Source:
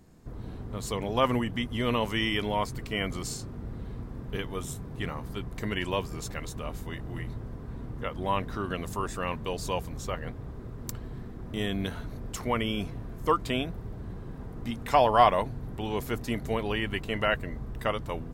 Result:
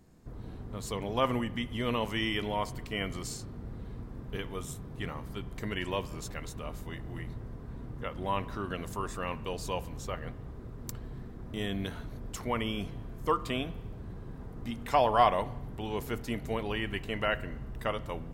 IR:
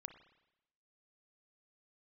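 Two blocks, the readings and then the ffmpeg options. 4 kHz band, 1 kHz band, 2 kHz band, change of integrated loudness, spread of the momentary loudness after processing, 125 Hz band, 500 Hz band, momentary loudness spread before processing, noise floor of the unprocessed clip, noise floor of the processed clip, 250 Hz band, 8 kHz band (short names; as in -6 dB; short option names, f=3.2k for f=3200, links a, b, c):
-3.5 dB, -3.5 dB, -3.5 dB, -3.5 dB, 14 LU, -3.5 dB, -3.5 dB, 14 LU, -41 dBFS, -45 dBFS, -3.5 dB, -3.5 dB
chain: -filter_complex "[0:a]asplit=2[a][b];[1:a]atrim=start_sample=2205[c];[b][c]afir=irnorm=-1:irlink=0,volume=3.5dB[d];[a][d]amix=inputs=2:normalize=0,volume=-8.5dB"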